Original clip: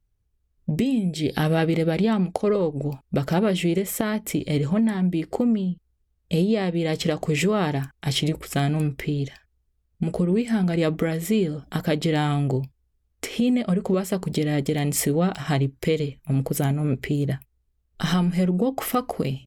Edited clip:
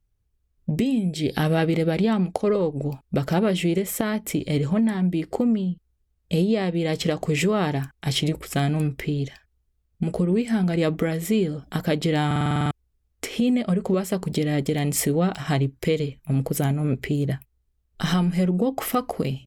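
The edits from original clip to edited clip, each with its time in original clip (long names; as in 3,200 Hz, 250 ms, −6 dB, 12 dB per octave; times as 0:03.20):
0:12.26: stutter in place 0.05 s, 9 plays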